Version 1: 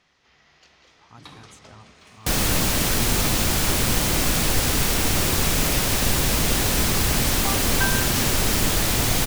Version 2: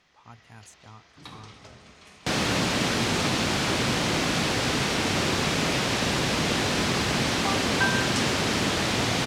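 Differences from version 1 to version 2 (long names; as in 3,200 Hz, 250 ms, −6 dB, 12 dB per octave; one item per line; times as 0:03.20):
speech: entry −0.85 s
second sound: add band-pass filter 130–4,800 Hz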